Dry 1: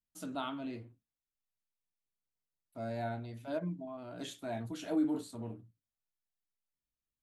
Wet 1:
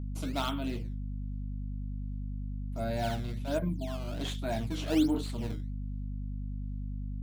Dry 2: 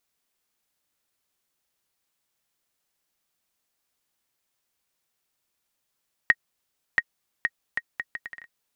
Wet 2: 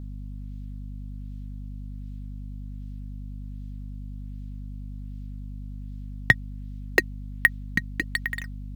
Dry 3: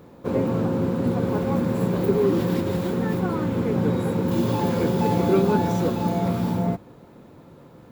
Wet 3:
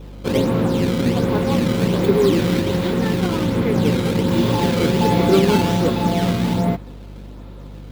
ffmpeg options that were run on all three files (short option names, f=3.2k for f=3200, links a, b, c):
-filter_complex "[0:a]adynamicequalizer=threshold=0.00447:dfrequency=2000:dqfactor=3.4:tfrequency=2000:tqfactor=3.4:attack=5:release=100:ratio=0.375:range=2:mode=boostabove:tftype=bell,asplit=2[a][b];[b]acrusher=samples=14:mix=1:aa=0.000001:lfo=1:lforange=22.4:lforate=1.3,volume=-3dB[c];[a][c]amix=inputs=2:normalize=0,equalizer=f=3.5k:w=1.1:g=7.5,aeval=exprs='val(0)+0.0178*(sin(2*PI*50*n/s)+sin(2*PI*2*50*n/s)/2+sin(2*PI*3*50*n/s)/3+sin(2*PI*4*50*n/s)/4+sin(2*PI*5*50*n/s)/5)':c=same"